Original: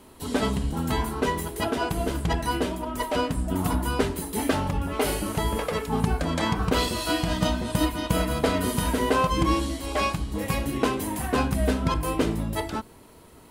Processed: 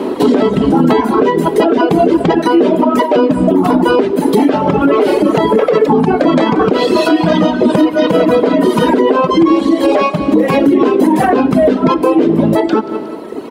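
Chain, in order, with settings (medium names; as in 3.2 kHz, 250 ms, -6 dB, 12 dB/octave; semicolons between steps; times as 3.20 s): reverberation RT60 1.3 s, pre-delay 39 ms, DRR 11 dB; 7.04–7.44 s: valve stage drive 16 dB, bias 0.35; three-band isolator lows -24 dB, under 170 Hz, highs -16 dB, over 4.9 kHz; feedback delay 181 ms, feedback 41%, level -13 dB; reverb removal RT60 1.6 s; compression 12:1, threshold -37 dBFS, peak gain reduction 19 dB; peaking EQ 360 Hz +15 dB 2.2 oct; loudness maximiser +24.5 dB; trim -1 dB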